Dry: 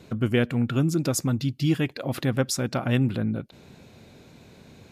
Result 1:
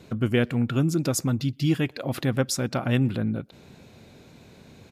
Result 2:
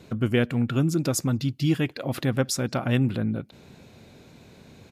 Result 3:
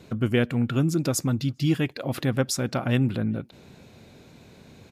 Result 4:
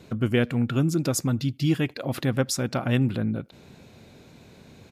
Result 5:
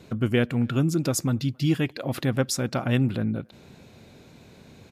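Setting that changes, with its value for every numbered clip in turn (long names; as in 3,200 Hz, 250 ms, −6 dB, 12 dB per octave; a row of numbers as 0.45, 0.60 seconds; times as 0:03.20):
far-end echo of a speakerphone, delay time: 120, 180, 400, 80, 270 milliseconds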